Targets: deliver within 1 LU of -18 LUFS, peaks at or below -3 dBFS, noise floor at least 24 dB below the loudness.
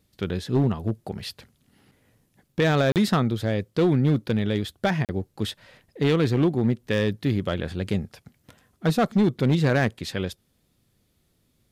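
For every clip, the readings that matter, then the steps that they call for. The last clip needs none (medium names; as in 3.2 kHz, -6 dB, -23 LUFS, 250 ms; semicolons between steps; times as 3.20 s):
clipped samples 1.2%; clipping level -14.5 dBFS; dropouts 2; longest dropout 38 ms; loudness -24.5 LUFS; peak level -14.5 dBFS; loudness target -18.0 LUFS
-> clip repair -14.5 dBFS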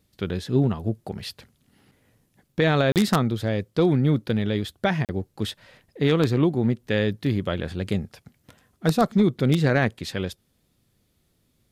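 clipped samples 0.0%; dropouts 2; longest dropout 38 ms
-> interpolate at 2.92/5.05 s, 38 ms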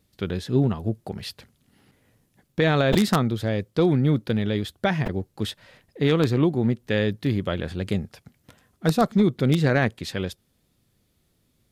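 dropouts 0; loudness -23.5 LUFS; peak level -5.5 dBFS; loudness target -18.0 LUFS
-> trim +5.5 dB; peak limiter -3 dBFS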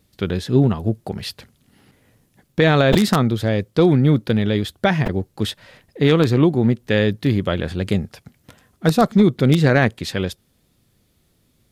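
loudness -18.5 LUFS; peak level -3.0 dBFS; noise floor -63 dBFS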